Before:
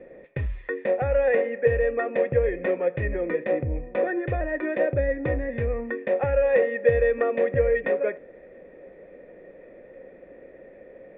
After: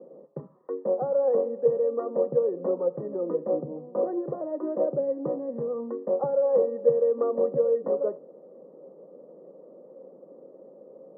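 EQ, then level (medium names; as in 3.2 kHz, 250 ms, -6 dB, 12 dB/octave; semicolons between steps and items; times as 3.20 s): Chebyshev band-pass 150–1200 Hz, order 5; band-stop 710 Hz, Q 18; -1.0 dB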